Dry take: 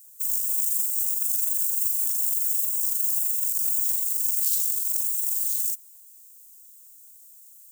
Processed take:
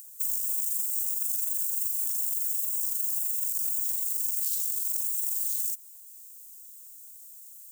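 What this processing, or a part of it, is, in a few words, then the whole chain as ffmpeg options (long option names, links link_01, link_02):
upward and downward compression: -af "acompressor=mode=upward:threshold=-44dB:ratio=2.5,acompressor=threshold=-27dB:ratio=4,volume=1dB"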